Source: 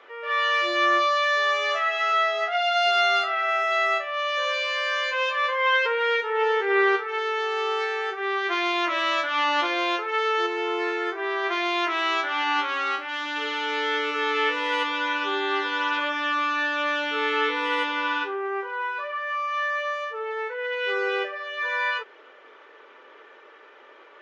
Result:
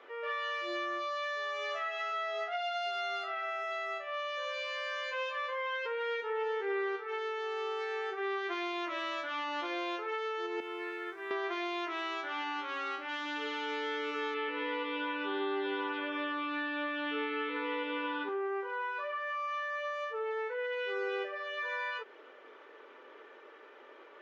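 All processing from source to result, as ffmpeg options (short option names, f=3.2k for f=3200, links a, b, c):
-filter_complex "[0:a]asettb=1/sr,asplit=3[a][b][c];[a]atrim=end=10.604[d];[b]atrim=start=10.6:end=11.31,asetpts=PTS-STARTPTS,afade=t=in:d=0.004:c=qsin,afade=t=out:st=0.706:d=0.004:c=qsin,lowpass=2.6k,equalizer=f=570:w=0.53:g=-13.5,aeval=exprs='sgn(val(0))*max(abs(val(0))-0.00106,0)':c=same[e];[c]atrim=start=11.306[f];[d][e]acrossfade=d=0.004:c1=hsin:c2=qsin[g];[g][f]acrossfade=d=0.004:c1=qsin:c2=hsin,asettb=1/sr,asplit=3[h][i][j];[h]atrim=end=14.344[k];[i]atrim=start=14.34:end=18.29,asetpts=PTS-STARTPTS,afade=t=in:d=0.004:c=qsin,afade=t=out:st=3.946:d=0.004:c=qsin,lowpass=f=3.9k:w=0.5412,lowpass=f=3.9k:w=1.3066,asplit=2[l][m];[m]adelay=140,lowpass=f=1.8k:p=1,volume=-5dB,asplit=2[n][o];[o]adelay=140,lowpass=f=1.8k:p=1,volume=0.53,asplit=2[p][q];[q]adelay=140,lowpass=f=1.8k:p=1,volume=0.53,asplit=2[r][s];[s]adelay=140,lowpass=f=1.8k:p=1,volume=0.53,asplit=2[t][u];[u]adelay=140,lowpass=f=1.8k:p=1,volume=0.53,asplit=2[v][w];[w]adelay=140,lowpass=f=1.8k:p=1,volume=0.53,asplit=2[x][y];[y]adelay=140,lowpass=f=1.8k:p=1,volume=0.53[z];[l][n][p][r][t][v][x][z]amix=inputs=8:normalize=0,atrim=end_sample=174195[aa];[j]atrim=start=18.286[ab];[k][aa]acrossfade=d=0.004:c1=hsin:c2=qsin[ac];[ac][ab]acrossfade=d=0.004:c1=qsin:c2=hsin,acompressor=threshold=-28dB:ratio=6,highpass=200,lowshelf=f=370:g=11,volume=-6.5dB"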